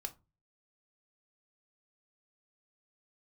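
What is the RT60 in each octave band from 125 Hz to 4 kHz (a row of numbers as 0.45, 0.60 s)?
0.55, 0.40, 0.30, 0.25, 0.20, 0.15 s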